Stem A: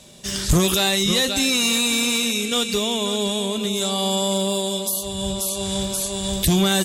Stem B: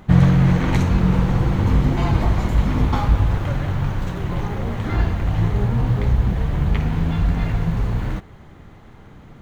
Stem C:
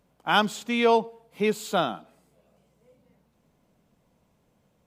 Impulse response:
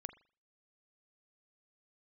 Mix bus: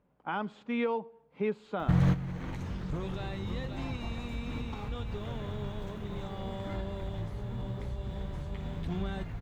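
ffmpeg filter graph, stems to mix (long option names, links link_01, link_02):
-filter_complex "[0:a]adelay=2400,volume=-18dB[link_01];[1:a]alimiter=limit=-13dB:level=0:latency=1:release=181,adelay=1800,volume=-3dB[link_02];[2:a]deesser=0.75,bandreject=frequency=680:width=12,volume=-4dB,asplit=2[link_03][link_04];[link_04]apad=whole_len=494442[link_05];[link_02][link_05]sidechaingate=range=-13dB:threshold=-56dB:ratio=16:detection=peak[link_06];[link_01][link_03]amix=inputs=2:normalize=0,lowpass=1900,alimiter=limit=-22dB:level=0:latency=1:release=416,volume=0dB[link_07];[link_06][link_07]amix=inputs=2:normalize=0"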